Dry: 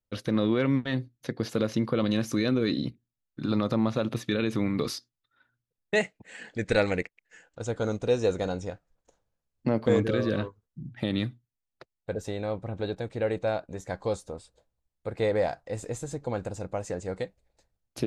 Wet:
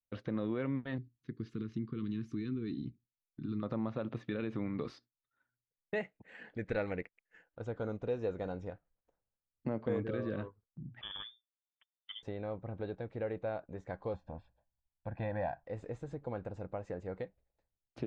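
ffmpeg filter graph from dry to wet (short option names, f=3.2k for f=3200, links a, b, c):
-filter_complex "[0:a]asettb=1/sr,asplit=3[a][b][c];[a]atrim=end=0.984[d];[b]atrim=start=0.98:end=3.63,asetpts=PTS-STARTPTS,afade=t=in:d=0.004:c=qsin,afade=t=out:st=2.646:d=0.004:c=qsin,asuperstop=centerf=670:order=8:qfactor=1,equalizer=f=1.3k:w=0.46:g=-10.5[e];[c]atrim=start=3.626[f];[d][e]acrossfade=d=0.004:c1=hsin:c2=qsin[g];[g][f]acrossfade=d=0.004:c1=qsin:c2=hsin,asettb=1/sr,asplit=3[h][i][j];[h]atrim=end=11.014[k];[i]atrim=start=11.01:end=12.23,asetpts=PTS-STARTPTS,afade=t=in:d=0.004:c=qsin,afade=t=out:st=1.216:d=0.004:c=qsin,asoftclip=type=hard:threshold=-17.5dB,tremolo=f=120:d=0.571,lowpass=f=3.1k:t=q:w=0.5098,lowpass=f=3.1k:t=q:w=0.6013,lowpass=f=3.1k:t=q:w=0.9,lowpass=f=3.1k:t=q:w=2.563,afreqshift=-3600[l];[j]atrim=start=12.226[m];[k][l]acrossfade=d=0.004:c1=hsin:c2=qsin[n];[n][m]acrossfade=d=0.004:c1=qsin:c2=hsin,asettb=1/sr,asplit=3[o][p][q];[o]atrim=end=14.144[r];[p]atrim=start=14.14:end=15.64,asetpts=PTS-STARTPTS,afade=t=in:d=0.004:c=qsin,afade=t=out:st=1.496:d=0.004:c=qsin,lowpass=3.2k,aecho=1:1:1.2:0.97,atrim=end_sample=66150[s];[q]atrim=start=15.636[t];[r][s]acrossfade=d=0.004:c1=hsin:c2=qsin[u];[u][t]acrossfade=d=0.004:c1=qsin:c2=hsin,lowpass=2.2k,acompressor=threshold=-33dB:ratio=1.5,agate=range=-7dB:threshold=-56dB:ratio=16:detection=peak,volume=-6dB"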